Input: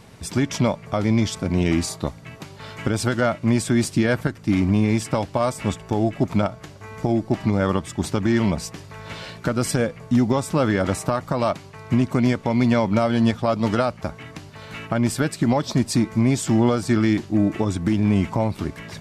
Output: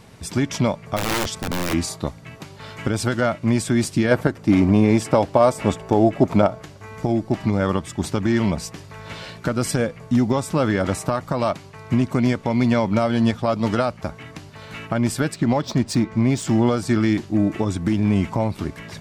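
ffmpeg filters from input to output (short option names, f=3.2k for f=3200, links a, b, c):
-filter_complex "[0:a]asplit=3[a][b][c];[a]afade=t=out:st=0.96:d=0.02[d];[b]aeval=exprs='(mod(7.08*val(0)+1,2)-1)/7.08':c=same,afade=t=in:st=0.96:d=0.02,afade=t=out:st=1.72:d=0.02[e];[c]afade=t=in:st=1.72:d=0.02[f];[d][e][f]amix=inputs=3:normalize=0,asettb=1/sr,asplit=3[g][h][i];[g]atrim=end=4.114[j];[h]atrim=start=4.11:end=6.62,asetpts=PTS-STARTPTS,afade=t=in:d=0.004:c=qsin,afade=t=out:st=2.506:d=0.004:c=qsin,equalizer=f=540:t=o:w=2.3:g=7.5[k];[i]atrim=start=6.616[l];[j][k]acrossfade=d=0.004:c1=hsin:c2=qsin[m];[m][l]acrossfade=d=0.004:c1=qsin:c2=hsin,asettb=1/sr,asplit=3[n][o][p];[n]atrim=end=15.344[q];[o]atrim=start=15.34:end=16.45,asetpts=PTS-STARTPTS,afade=t=in:d=0.004:c=qsin,afade=t=out:st=1.106:d=0.004:c=qsin,adynamicsmooth=sensitivity=5.5:basefreq=4.5k[r];[p]atrim=start=16.446[s];[q][r]acrossfade=d=0.004:c1=hsin:c2=qsin[t];[t][s]acrossfade=d=0.004:c1=qsin:c2=hsin"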